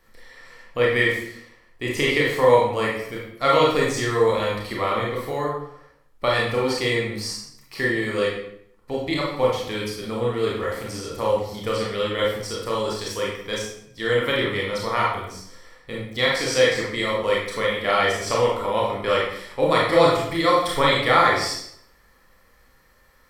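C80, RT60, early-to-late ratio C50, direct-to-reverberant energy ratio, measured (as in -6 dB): 5.5 dB, 0.70 s, 2.0 dB, -4.0 dB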